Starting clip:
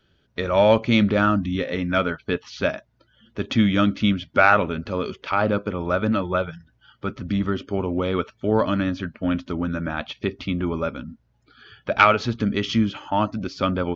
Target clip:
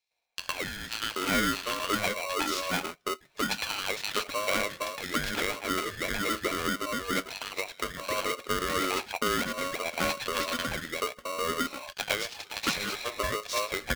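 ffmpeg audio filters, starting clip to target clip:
-filter_complex "[0:a]highpass=530,agate=range=-18dB:threshold=-49dB:ratio=16:detection=peak,asettb=1/sr,asplit=3[a][b][c];[a]atrim=end=11.014[d];[b]atrim=start=11.01:end=13.13,asetpts=PTS-STARTPTS,afade=t=in:d=0.004:c=qsin,afade=t=out:st=2.116:d=0.004:c=qsin,equalizer=f=890:w=1.7:g=-13[e];[c]atrim=start=13.126[f];[d][e]acrossfade=d=0.004:c1=hsin:c2=qsin[g];[g][f]acrossfade=d=0.004:c1=qsin:c2=hsin,acompressor=threshold=-32dB:ratio=6,acrossover=split=990|3000[h][i][j];[i]adelay=110[k];[h]adelay=780[l];[l][k][j]amix=inputs=3:normalize=0,aeval=exprs='val(0)*sgn(sin(2*PI*830*n/s))':c=same,volume=7.5dB"

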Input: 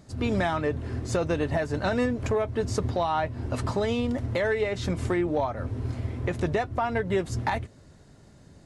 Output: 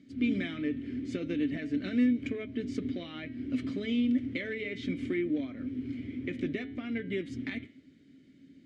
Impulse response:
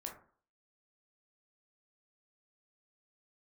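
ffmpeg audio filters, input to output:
-filter_complex "[0:a]asplit=3[a][b][c];[a]bandpass=f=270:t=q:w=8,volume=0dB[d];[b]bandpass=f=2.29k:t=q:w=8,volume=-6dB[e];[c]bandpass=f=3.01k:t=q:w=8,volume=-9dB[f];[d][e][f]amix=inputs=3:normalize=0,bandreject=f=106.1:t=h:w=4,bandreject=f=212.2:t=h:w=4,bandreject=f=318.3:t=h:w=4,bandreject=f=424.4:t=h:w=4,bandreject=f=530.5:t=h:w=4,bandreject=f=636.6:t=h:w=4,bandreject=f=742.7:t=h:w=4,bandreject=f=848.8:t=h:w=4,bandreject=f=954.9:t=h:w=4,bandreject=f=1.061k:t=h:w=4,bandreject=f=1.1671k:t=h:w=4,bandreject=f=1.2732k:t=h:w=4,bandreject=f=1.3793k:t=h:w=4,bandreject=f=1.4854k:t=h:w=4,bandreject=f=1.5915k:t=h:w=4,bandreject=f=1.6976k:t=h:w=4,bandreject=f=1.8037k:t=h:w=4,bandreject=f=1.9098k:t=h:w=4,bandreject=f=2.0159k:t=h:w=4,bandreject=f=2.122k:t=h:w=4,bandreject=f=2.2281k:t=h:w=4,bandreject=f=2.3342k:t=h:w=4,bandreject=f=2.4403k:t=h:w=4,bandreject=f=2.5464k:t=h:w=4,bandreject=f=2.6525k:t=h:w=4,bandreject=f=2.7586k:t=h:w=4,bandreject=f=2.8647k:t=h:w=4,bandreject=f=2.9708k:t=h:w=4,bandreject=f=3.0769k:t=h:w=4,bandreject=f=3.183k:t=h:w=4,bandreject=f=3.2891k:t=h:w=4,bandreject=f=3.3952k:t=h:w=4,bandreject=f=3.5013k:t=h:w=4,bandreject=f=3.6074k:t=h:w=4,bandreject=f=3.7135k:t=h:w=4,bandreject=f=3.8196k:t=h:w=4,bandreject=f=3.9257k:t=h:w=4,bandreject=f=4.0318k:t=h:w=4,bandreject=f=4.1379k:t=h:w=4,bandreject=f=4.244k:t=h:w=4,volume=8dB"

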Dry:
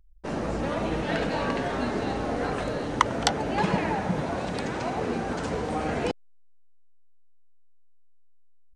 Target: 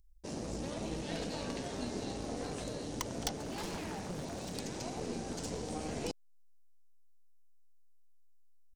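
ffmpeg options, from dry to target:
-filter_complex "[0:a]firequalizer=gain_entry='entry(300,0);entry(1300,-10);entry(2300,-3);entry(5400,11)':delay=0.05:min_phase=1,asplit=2[a][b];[b]acompressor=threshold=-40dB:ratio=6,volume=-3dB[c];[a][c]amix=inputs=2:normalize=0,aeval=exprs='(tanh(7.94*val(0)+0.65)-tanh(0.65))/7.94':c=same,asettb=1/sr,asplit=3[d][e][f];[d]atrim=end=3.354[g];[e]atrim=start=3.35:end=4.57,asetpts=PTS-STARTPTS,afade=t=in:d=0.004:c=qsin,afade=t=out:st=1.216:d=0.004:c=qsin,aeval=exprs='0.0473*(abs(mod(val(0)/0.0473+3,4)-2)-1)':c=same[h];[f]atrim=start=4.566[i];[g][h]acrossfade=d=0.004:c1=hsin:c2=qsin[j];[j][i]acrossfade=d=0.004:c1=qsin:c2=hsin,volume=-7.5dB"

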